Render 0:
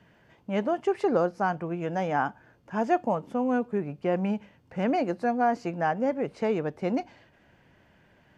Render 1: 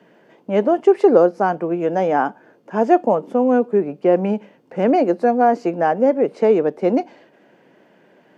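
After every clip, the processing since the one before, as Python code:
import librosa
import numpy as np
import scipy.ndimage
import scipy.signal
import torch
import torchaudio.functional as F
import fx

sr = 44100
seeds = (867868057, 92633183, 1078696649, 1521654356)

y = scipy.signal.sosfilt(scipy.signal.butter(4, 170.0, 'highpass', fs=sr, output='sos'), x)
y = fx.peak_eq(y, sr, hz=430.0, db=10.0, octaves=1.7)
y = F.gain(torch.from_numpy(y), 3.5).numpy()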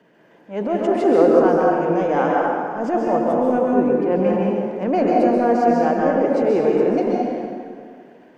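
y = fx.transient(x, sr, attack_db=-11, sustain_db=5)
y = fx.rev_plate(y, sr, seeds[0], rt60_s=2.1, hf_ratio=0.6, predelay_ms=115, drr_db=-3.5)
y = F.gain(torch.from_numpy(y), -3.5).numpy()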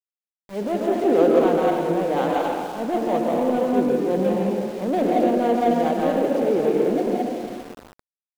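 y = scipy.ndimage.median_filter(x, 25, mode='constant')
y = np.where(np.abs(y) >= 10.0 ** (-34.0 / 20.0), y, 0.0)
y = F.gain(torch.from_numpy(y), -2.5).numpy()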